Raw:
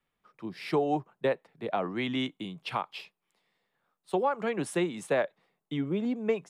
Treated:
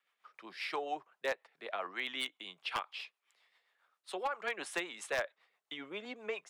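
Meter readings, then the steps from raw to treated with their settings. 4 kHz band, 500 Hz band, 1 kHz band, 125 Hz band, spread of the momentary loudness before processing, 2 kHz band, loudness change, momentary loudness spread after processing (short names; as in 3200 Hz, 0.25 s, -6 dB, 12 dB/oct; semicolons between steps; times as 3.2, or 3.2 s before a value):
-1.0 dB, -11.0 dB, -7.0 dB, -26.0 dB, 10 LU, -0.5 dB, -8.0 dB, 10 LU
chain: HPF 1000 Hz 12 dB/oct; high shelf 7700 Hz -10.5 dB; in parallel at +1.5 dB: compressor 4:1, threshold -53 dBFS, peak gain reduction 21 dB; on the sum: rotary speaker horn 7.5 Hz; wavefolder -27.5 dBFS; gain +2 dB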